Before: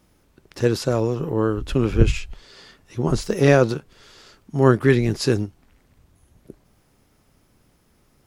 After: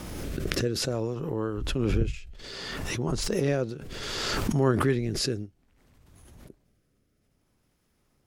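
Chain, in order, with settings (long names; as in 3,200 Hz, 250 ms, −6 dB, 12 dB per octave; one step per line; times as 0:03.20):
rotating-speaker cabinet horn 0.6 Hz
background raised ahead of every attack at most 23 dB per second
level −9 dB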